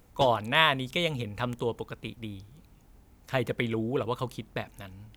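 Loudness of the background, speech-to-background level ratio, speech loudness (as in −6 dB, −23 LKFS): −41.5 LKFS, 12.5 dB, −29.0 LKFS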